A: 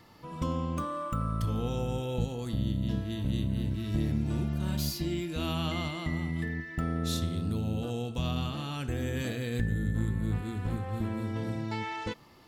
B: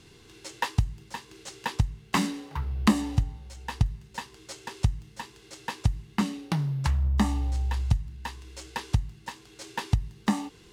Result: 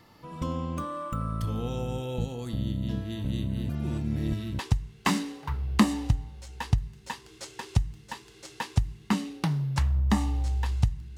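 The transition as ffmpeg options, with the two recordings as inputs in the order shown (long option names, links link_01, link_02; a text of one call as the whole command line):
ffmpeg -i cue0.wav -i cue1.wav -filter_complex "[0:a]apad=whole_dur=11.17,atrim=end=11.17,asplit=2[link_01][link_02];[link_01]atrim=end=3.692[link_03];[link_02]atrim=start=3.688:end=4.592,asetpts=PTS-STARTPTS,areverse[link_04];[1:a]atrim=start=1.668:end=8.25[link_05];[link_03][link_04]acrossfade=duration=0.004:curve1=hsin:curve2=hsin[link_06];[link_06][link_05]acrossfade=duration=0.004:curve1=hsin:curve2=hsin" out.wav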